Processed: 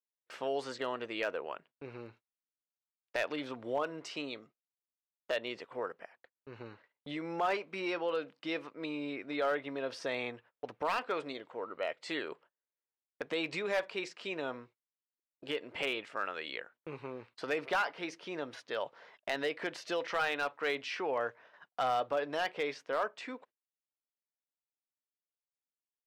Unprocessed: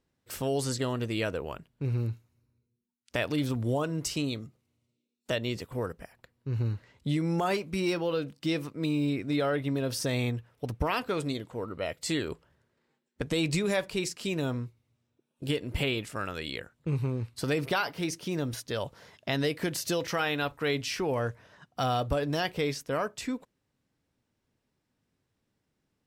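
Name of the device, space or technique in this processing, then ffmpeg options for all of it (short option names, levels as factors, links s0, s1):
walkie-talkie: -af "highpass=530,lowpass=2700,asoftclip=type=hard:threshold=0.0631,agate=range=0.0501:threshold=0.00126:ratio=16:detection=peak"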